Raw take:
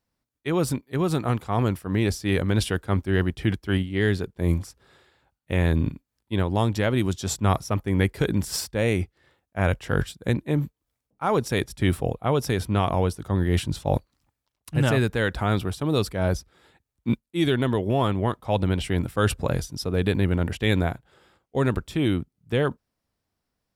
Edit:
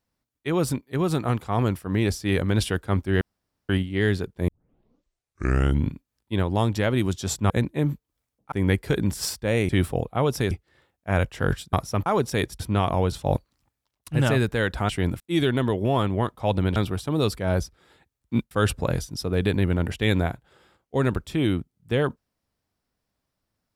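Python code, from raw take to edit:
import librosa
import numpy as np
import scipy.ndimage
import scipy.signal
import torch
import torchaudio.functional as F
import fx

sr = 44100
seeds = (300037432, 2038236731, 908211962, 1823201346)

y = fx.edit(x, sr, fx.room_tone_fill(start_s=3.21, length_s=0.48),
    fx.tape_start(start_s=4.48, length_s=1.45),
    fx.swap(start_s=7.5, length_s=0.33, other_s=10.22, other_length_s=1.02),
    fx.move(start_s=11.78, length_s=0.82, to_s=9.0),
    fx.cut(start_s=13.12, length_s=0.61),
    fx.swap(start_s=15.5, length_s=1.75, other_s=18.81, other_length_s=0.31), tone=tone)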